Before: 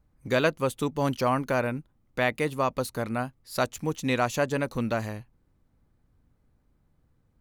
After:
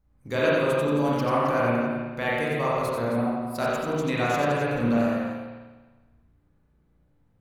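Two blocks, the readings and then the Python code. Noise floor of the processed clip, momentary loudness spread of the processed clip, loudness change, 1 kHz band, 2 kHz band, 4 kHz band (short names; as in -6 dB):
-65 dBFS, 6 LU, +3.0 dB, +3.0 dB, +2.0 dB, 0.0 dB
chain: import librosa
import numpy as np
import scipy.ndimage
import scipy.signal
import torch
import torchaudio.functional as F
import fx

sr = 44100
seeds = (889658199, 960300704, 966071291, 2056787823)

y = fx.echo_multitap(x, sr, ms=(89, 267), db=(-5.0, -11.0))
y = fx.spec_box(y, sr, start_s=3.16, length_s=0.39, low_hz=1300.0, high_hz=8000.0, gain_db=-14)
y = fx.rev_spring(y, sr, rt60_s=1.3, pass_ms=(34, 51), chirp_ms=30, drr_db=-5.5)
y = y * librosa.db_to_amplitude(-5.5)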